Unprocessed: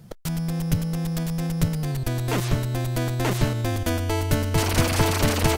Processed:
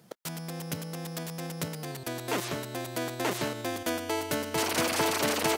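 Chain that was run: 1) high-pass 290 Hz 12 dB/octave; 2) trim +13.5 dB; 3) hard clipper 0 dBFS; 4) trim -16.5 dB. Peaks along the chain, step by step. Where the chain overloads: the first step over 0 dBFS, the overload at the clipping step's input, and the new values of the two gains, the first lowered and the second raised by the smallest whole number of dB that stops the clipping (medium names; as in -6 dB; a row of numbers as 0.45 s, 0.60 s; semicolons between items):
-10.0 dBFS, +3.5 dBFS, 0.0 dBFS, -16.5 dBFS; step 2, 3.5 dB; step 2 +9.5 dB, step 4 -12.5 dB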